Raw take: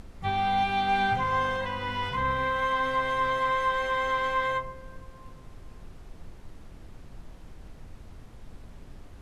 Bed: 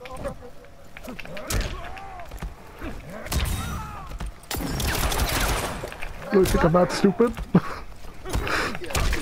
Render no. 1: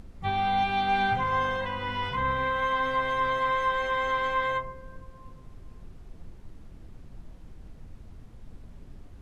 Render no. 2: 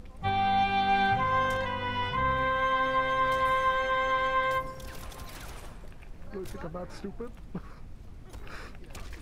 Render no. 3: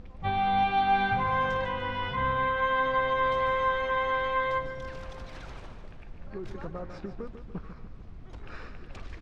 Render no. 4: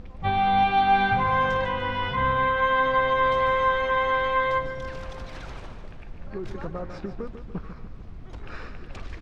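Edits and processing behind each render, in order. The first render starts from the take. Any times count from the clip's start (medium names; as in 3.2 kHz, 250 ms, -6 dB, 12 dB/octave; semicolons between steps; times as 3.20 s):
noise reduction 6 dB, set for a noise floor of -48 dBFS
add bed -20.5 dB
distance through air 140 m; feedback delay 147 ms, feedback 56%, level -10.5 dB
trim +4.5 dB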